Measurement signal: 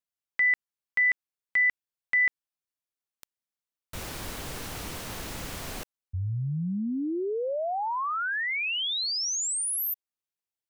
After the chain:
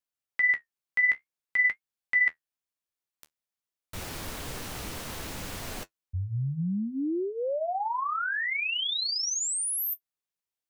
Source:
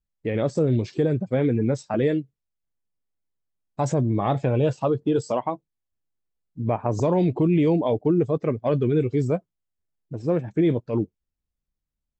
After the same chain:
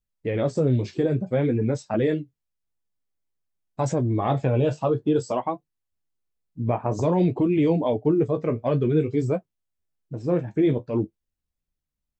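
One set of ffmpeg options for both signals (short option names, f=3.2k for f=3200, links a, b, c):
-af "flanger=delay=8.5:depth=8.5:regen=-43:speed=0.53:shape=triangular,volume=3.5dB"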